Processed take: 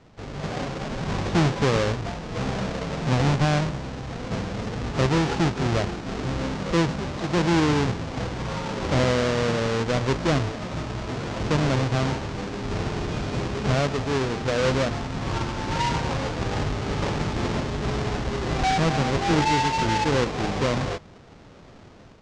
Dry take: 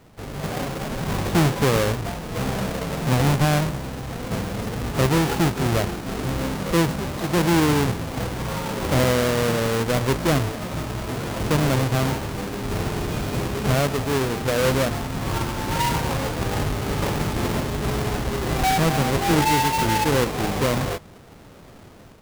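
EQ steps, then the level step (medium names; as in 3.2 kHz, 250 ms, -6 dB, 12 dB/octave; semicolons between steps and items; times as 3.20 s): low-pass 6.6 kHz 24 dB/octave; -2.0 dB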